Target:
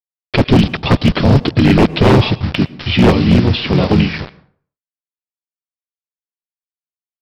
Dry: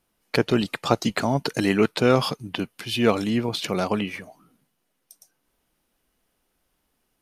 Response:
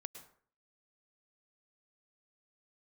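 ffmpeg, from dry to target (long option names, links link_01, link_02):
-filter_complex "[0:a]acrossover=split=3700[link_01][link_02];[link_02]acompressor=threshold=-39dB:ratio=4:attack=1:release=60[link_03];[link_01][link_03]amix=inputs=2:normalize=0,aemphasis=mode=reproduction:type=riaa,asplit=4[link_04][link_05][link_06][link_07];[link_05]asetrate=29433,aresample=44100,atempo=1.49831,volume=-13dB[link_08];[link_06]asetrate=33038,aresample=44100,atempo=1.33484,volume=-4dB[link_09];[link_07]asetrate=35002,aresample=44100,atempo=1.25992,volume=-1dB[link_10];[link_04][link_08][link_09][link_10]amix=inputs=4:normalize=0,highshelf=frequency=2100:width_type=q:width=1.5:gain=9.5,aresample=11025,acrusher=bits=4:mix=0:aa=0.000001,aresample=44100,aeval=exprs='0.501*(abs(mod(val(0)/0.501+3,4)-2)-1)':channel_layout=same,asplit=2[link_11][link_12];[1:a]atrim=start_sample=2205[link_13];[link_12][link_13]afir=irnorm=-1:irlink=0,volume=-4.5dB[link_14];[link_11][link_14]amix=inputs=2:normalize=0,volume=1dB"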